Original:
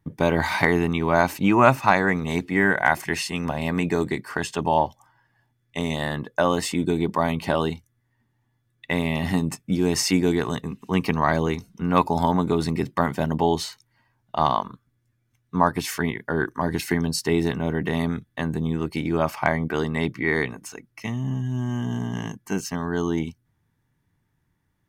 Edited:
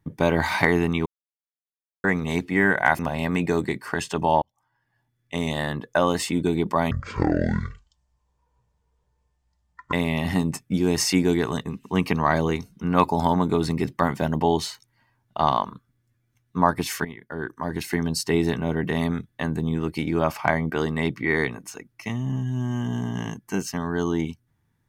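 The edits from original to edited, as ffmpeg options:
-filter_complex "[0:a]asplit=8[a][b][c][d][e][f][g][h];[a]atrim=end=1.06,asetpts=PTS-STARTPTS,afade=t=out:st=1.056:d=0.004:c=hsin[i];[b]atrim=start=1.06:end=2.04,asetpts=PTS-STARTPTS,volume=0[j];[c]atrim=start=2.04:end=2.992,asetpts=PTS-STARTPTS,afade=t=in:d=0.004:c=hsin[k];[d]atrim=start=3.418:end=4.85,asetpts=PTS-STARTPTS,afade=t=out:st=1.428:d=0.004:c=hsin[l];[e]atrim=start=4.85:end=7.344,asetpts=PTS-STARTPTS,afade=t=in:d=0.99[m];[f]atrim=start=7.34:end=8.91,asetpts=PTS-STARTPTS,asetrate=22932,aresample=44100,atrim=end_sample=133148,asetpts=PTS-STARTPTS[n];[g]atrim=start=8.906:end=16.03,asetpts=PTS-STARTPTS,afade=t=out:st=7.12:d=0.004:c=hsin:silence=0.199526[o];[h]atrim=start=16.03,asetpts=PTS-STARTPTS,afade=t=in:d=1.2:silence=0.199526[p];[i][j][k]concat=n=3:v=0:a=1[q];[l][m]concat=n=2:v=0:a=1[r];[q][r]acrossfade=d=0.004:c1=hsin:c2=hsin[s];[s][n]acrossfade=d=0.004:c1=hsin:c2=hsin[t];[o][p]concat=n=2:v=0:a=1[u];[t][u]acrossfade=d=0.004:c1=hsin:c2=hsin"

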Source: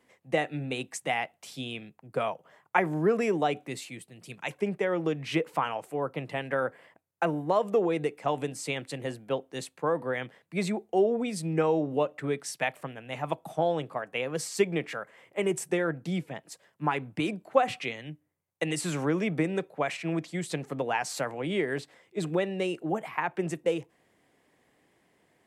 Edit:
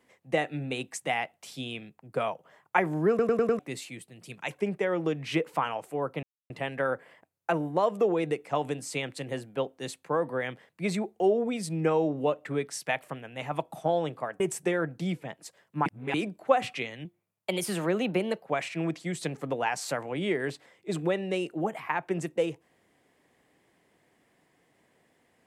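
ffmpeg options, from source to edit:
-filter_complex "[0:a]asplit=12[a][b][c][d][e][f][g][h][i][j][k][l];[a]atrim=end=3.192[m];[b]atrim=start=3.088:end=3.192[n];[c]atrim=start=3.088:end=3.192[o];[d]atrim=start=3.088:end=3.192[p];[e]atrim=start=3.088:end=3.192[q];[f]atrim=start=3.588:end=6.23,asetpts=PTS-STARTPTS,afade=t=out:st=2.638:d=0.004:c=hsin,apad=pad_dur=0.27[r];[g]atrim=start=6.23:end=14.132,asetpts=PTS-STARTPTS,afade=t=in:d=0.004:c=hsin[s];[h]atrim=start=15.458:end=16.922[t];[i]atrim=start=16.918:end=17.202,asetpts=PTS-STARTPTS,areverse[u];[j]atrim=start=17.198:end=18.114[v];[k]atrim=start=18.11:end=19.73,asetpts=PTS-STARTPTS,asetrate=51156,aresample=44100[w];[l]atrim=start=19.726[x];[m][n]acrossfade=d=0.004:c1=hsin:c2=hsin[y];[y][o]acrossfade=d=0.004:c1=hsin:c2=hsin[z];[z][p]acrossfade=d=0.004:c1=hsin:c2=hsin[aa];[aa][q]acrossfade=d=0.004:c1=hsin:c2=hsin[ab];[r][s]concat=n=2:v=0:a=1[ac];[ab][ac]acrossfade=d=0.004:c1=hsin:c2=hsin[ad];[ad][t]acrossfade=d=0.004:c1=hsin:c2=hsin[ae];[ae][u]acrossfade=d=0.004:c1=hsin:c2=hsin[af];[af][v]acrossfade=d=0.004:c1=hsin:c2=hsin[ag];[ag][w]acrossfade=d=0.004:c1=hsin:c2=hsin[ah];[ah][x]acrossfade=d=0.004:c1=hsin:c2=hsin"

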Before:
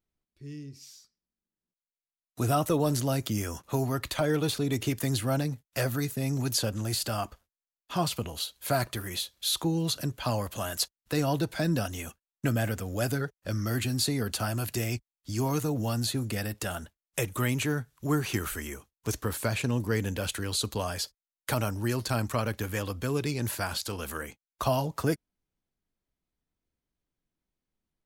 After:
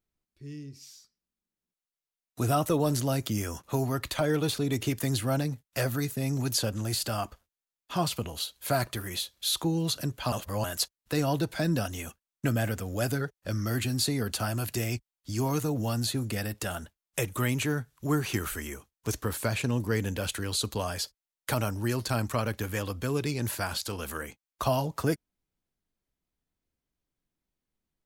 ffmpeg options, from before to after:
-filter_complex "[0:a]asplit=3[a][b][c];[a]atrim=end=10.322[d];[b]atrim=start=10.318:end=10.642,asetpts=PTS-STARTPTS,areverse[e];[c]atrim=start=10.638[f];[d][e]acrossfade=d=0.004:c1=hsin:c2=hsin[g];[g][f]acrossfade=d=0.004:c1=hsin:c2=hsin"

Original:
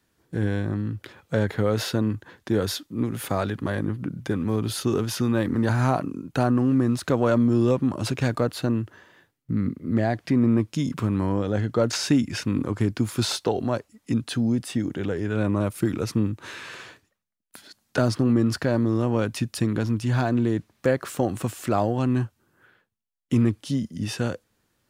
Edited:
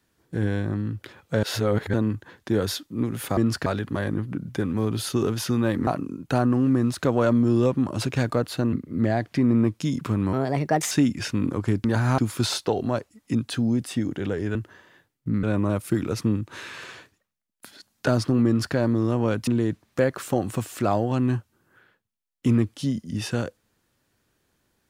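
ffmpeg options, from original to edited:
-filter_complex "[0:a]asplit=14[a][b][c][d][e][f][g][h][i][j][k][l][m][n];[a]atrim=end=1.432[o];[b]atrim=start=1.428:end=1.942,asetpts=PTS-STARTPTS,areverse[p];[c]atrim=start=1.938:end=3.372[q];[d]atrim=start=18.368:end=18.662[r];[e]atrim=start=3.368:end=5.582[s];[f]atrim=start=5.918:end=8.782[t];[g]atrim=start=9.658:end=11.264[u];[h]atrim=start=11.26:end=12.04,asetpts=PTS-STARTPTS,asetrate=59094,aresample=44100,atrim=end_sample=25670,asetpts=PTS-STARTPTS[v];[i]atrim=start=12.036:end=12.972[w];[j]atrim=start=5.578:end=5.922[x];[k]atrim=start=12.968:end=15.342[y];[l]atrim=start=8.778:end=9.662[z];[m]atrim=start=15.338:end=19.382[aa];[n]atrim=start=20.338[ab];[o][p]acrossfade=d=0.004:c1=hsin:c2=hsin[ac];[ac][q]acrossfade=d=0.004:c1=hsin:c2=hsin[ad];[ad][r]acrossfade=d=0.004:c1=hsin:c2=hsin[ae];[ae][s]acrossfade=d=0.004:c1=hsin:c2=hsin[af];[af][t]acrossfade=d=0.004:c1=hsin:c2=hsin[ag];[ag][u]acrossfade=d=0.004:c1=hsin:c2=hsin[ah];[ah][v]acrossfade=d=0.004:c1=hsin:c2=hsin[ai];[ai][w]acrossfade=d=0.004:c1=hsin:c2=hsin[aj];[aj][x]acrossfade=d=0.004:c1=hsin:c2=hsin[ak];[ak][y]acrossfade=d=0.004:c1=hsin:c2=hsin[al];[al][z]acrossfade=d=0.004:c1=hsin:c2=hsin[am];[am][aa]acrossfade=d=0.004:c1=hsin:c2=hsin[an];[an][ab]acrossfade=d=0.004:c1=hsin:c2=hsin"

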